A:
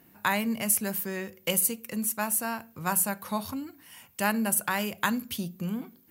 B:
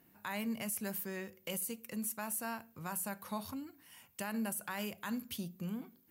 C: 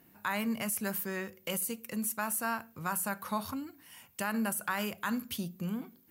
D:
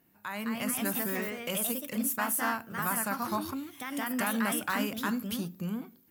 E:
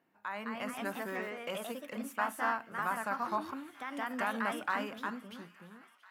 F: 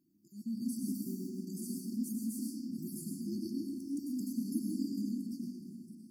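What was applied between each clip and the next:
peak limiter -20 dBFS, peak gain reduction 11 dB; trim -8 dB
dynamic bell 1.3 kHz, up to +7 dB, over -57 dBFS, Q 1.9; trim +4.5 dB
level rider gain up to 7 dB; ever faster or slower copies 238 ms, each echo +2 st, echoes 2; trim -6 dB
fade out at the end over 1.43 s; band-pass filter 930 Hz, Q 0.64; feedback echo behind a high-pass 678 ms, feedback 71%, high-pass 1.5 kHz, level -19.5 dB
random holes in the spectrogram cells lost 25%; brick-wall FIR band-stop 370–4400 Hz; algorithmic reverb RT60 1.9 s, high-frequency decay 0.55×, pre-delay 65 ms, DRR -1.5 dB; trim +4.5 dB

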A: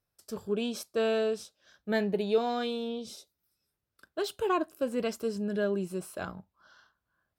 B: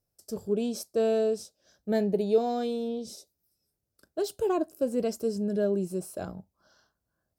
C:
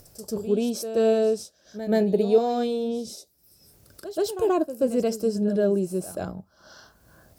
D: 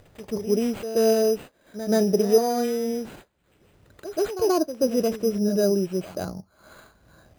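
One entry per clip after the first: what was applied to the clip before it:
high-order bell 1.9 kHz -11 dB 2.3 oct; trim +3 dB
upward compressor, threshold -40 dBFS; pre-echo 131 ms -12 dB; trim +4.5 dB
distance through air 61 m; careless resampling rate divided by 8×, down none, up hold; trim +1 dB

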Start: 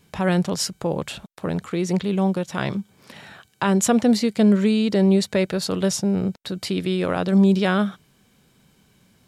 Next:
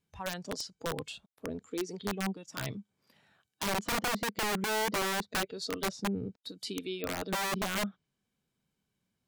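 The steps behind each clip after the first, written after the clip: spectral noise reduction 16 dB; low-pass that closes with the level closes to 1.6 kHz, closed at -17.5 dBFS; integer overflow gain 18 dB; trim -8 dB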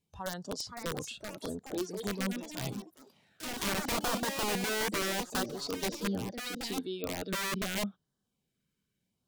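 LFO notch sine 0.77 Hz 720–2500 Hz; ever faster or slower copies 562 ms, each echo +4 st, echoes 3, each echo -6 dB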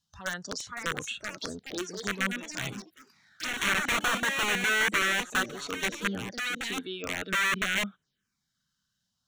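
high-order bell 2.9 kHz +14.5 dB 2.7 oct; touch-sensitive phaser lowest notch 390 Hz, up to 4.9 kHz, full sweep at -28 dBFS; trim -1 dB

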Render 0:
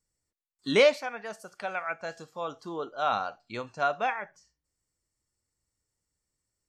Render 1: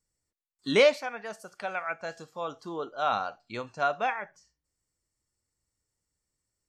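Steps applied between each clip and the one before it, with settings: no audible change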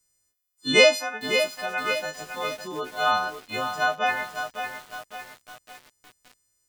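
partials quantised in pitch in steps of 3 st; bit-crushed delay 555 ms, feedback 55%, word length 7-bit, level -7 dB; trim +2.5 dB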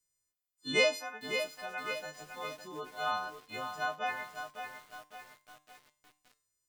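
feedback comb 150 Hz, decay 0.43 s, harmonics all, mix 60%; trim -4.5 dB

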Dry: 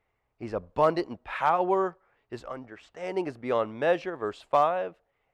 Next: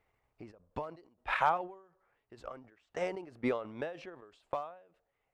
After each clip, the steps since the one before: transient shaper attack +7 dB, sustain -7 dB; peak limiter -15.5 dBFS, peak gain reduction 10 dB; endings held to a fixed fall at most 100 dB/s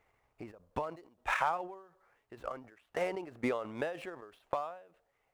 median filter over 9 samples; bass shelf 470 Hz -5 dB; compression 2.5:1, threshold -37 dBFS, peak gain reduction 9.5 dB; trim +6.5 dB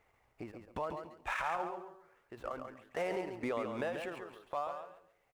peak limiter -27 dBFS, peak gain reduction 11 dB; on a send: feedback delay 139 ms, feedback 22%, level -6.5 dB; on the sum: trim +1 dB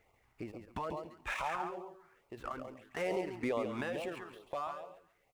LFO notch sine 2.3 Hz 490–1700 Hz; trim +2.5 dB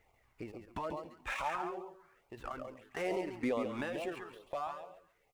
flange 0.42 Hz, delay 1 ms, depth 3.1 ms, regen +66%; trim +4 dB

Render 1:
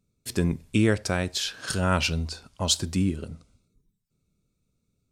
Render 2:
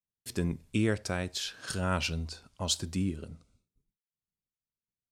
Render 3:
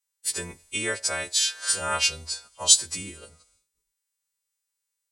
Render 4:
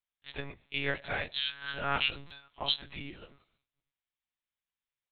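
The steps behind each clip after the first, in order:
expander -59 dBFS; trim -6.5 dB
partials quantised in pitch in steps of 2 st; graphic EQ 125/250/500/1000/2000/4000/8000 Hz -9/-7/+6/+6/+6/+4/+11 dB; trim -3.5 dB
monotone LPC vocoder at 8 kHz 140 Hz; buffer glitch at 2.27 s, samples 256, times 5; trim -3.5 dB

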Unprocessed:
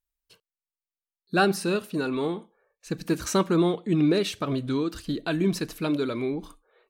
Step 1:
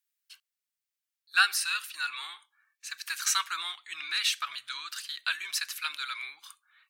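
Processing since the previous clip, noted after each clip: inverse Chebyshev high-pass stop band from 540 Hz, stop band 50 dB; trim +5.5 dB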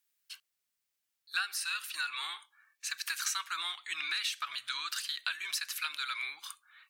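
compression 5:1, threshold -37 dBFS, peak gain reduction 17.5 dB; trim +4.5 dB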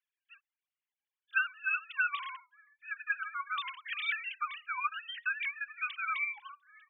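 formants replaced by sine waves; trim +1 dB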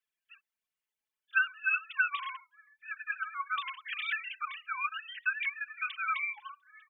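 comb 4.6 ms, depth 55%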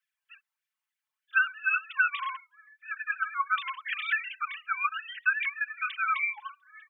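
LFO high-pass sine 3.4 Hz 880–1800 Hz

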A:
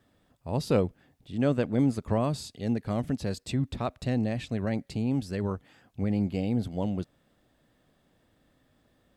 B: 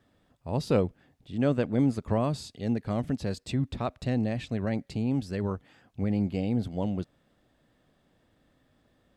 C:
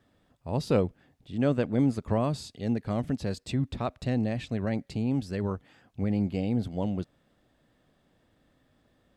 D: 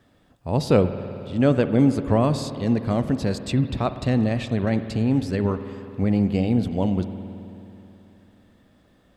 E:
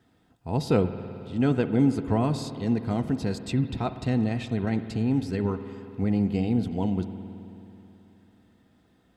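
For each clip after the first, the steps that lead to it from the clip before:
treble shelf 10 kHz -8.5 dB
no audible change
spring tank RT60 3.1 s, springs 54 ms, chirp 45 ms, DRR 10 dB; trim +7 dB
comb of notches 570 Hz; trim -3.5 dB

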